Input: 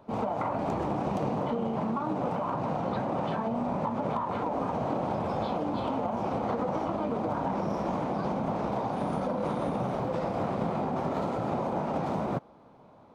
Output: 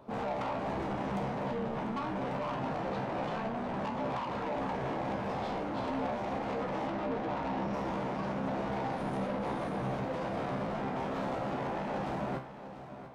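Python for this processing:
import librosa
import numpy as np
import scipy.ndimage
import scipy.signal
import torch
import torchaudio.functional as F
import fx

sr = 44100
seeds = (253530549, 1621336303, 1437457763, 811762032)

y = fx.lowpass(x, sr, hz=5000.0, slope=12, at=(6.87, 7.73))
y = 10.0 ** (-33.0 / 20.0) * np.tanh(y / 10.0 ** (-33.0 / 20.0))
y = fx.comb_fb(y, sr, f0_hz=66.0, decay_s=0.39, harmonics='all', damping=0.0, mix_pct=80)
y = fx.echo_feedback(y, sr, ms=694, feedback_pct=41, wet_db=-13)
y = y * 10.0 ** (8.0 / 20.0)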